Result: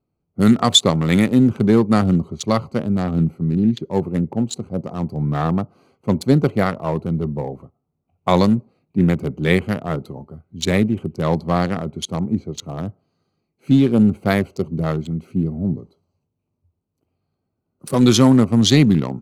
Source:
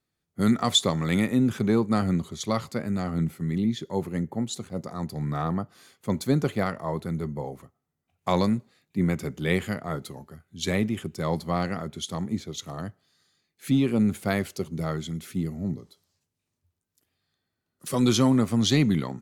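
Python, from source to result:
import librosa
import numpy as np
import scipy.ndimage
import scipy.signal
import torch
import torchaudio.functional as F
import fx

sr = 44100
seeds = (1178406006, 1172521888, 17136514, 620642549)

y = fx.wiener(x, sr, points=25)
y = F.gain(torch.from_numpy(y), 8.5).numpy()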